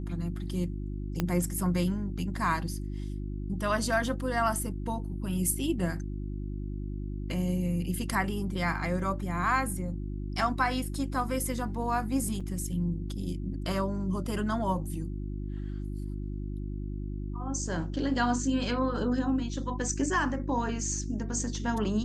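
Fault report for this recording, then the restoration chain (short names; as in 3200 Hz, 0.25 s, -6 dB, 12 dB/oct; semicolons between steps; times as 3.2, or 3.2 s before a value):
hum 50 Hz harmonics 7 -35 dBFS
1.2 pop -14 dBFS
12.4–12.41 gap 5.5 ms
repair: de-click; de-hum 50 Hz, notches 7; interpolate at 12.4, 5.5 ms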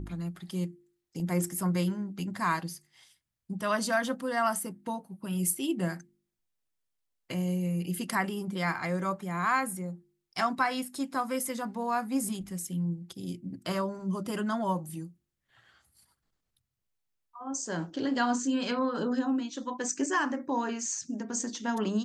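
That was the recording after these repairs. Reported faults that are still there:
1.2 pop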